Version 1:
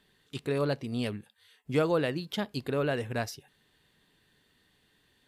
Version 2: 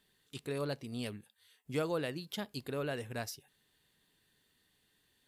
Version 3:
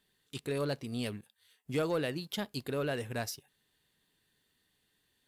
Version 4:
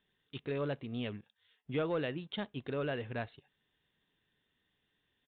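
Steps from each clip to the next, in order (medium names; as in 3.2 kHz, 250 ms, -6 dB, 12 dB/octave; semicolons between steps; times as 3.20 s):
treble shelf 5.5 kHz +10.5 dB; trim -8 dB
waveshaping leveller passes 1
resampled via 8 kHz; trim -2 dB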